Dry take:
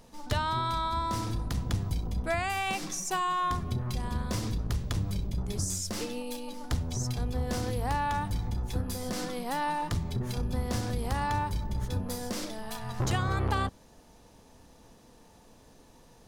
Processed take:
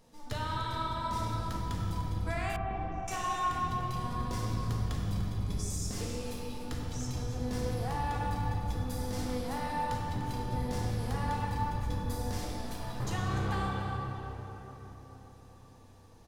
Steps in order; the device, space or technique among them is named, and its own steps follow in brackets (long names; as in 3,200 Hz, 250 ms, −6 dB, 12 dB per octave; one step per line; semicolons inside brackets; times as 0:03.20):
cave (single-tap delay 296 ms −12.5 dB; convolution reverb RT60 4.2 s, pre-delay 3 ms, DRR −3.5 dB)
0:02.56–0:03.08: low-pass filter 1,100 Hz 12 dB per octave
level −8.5 dB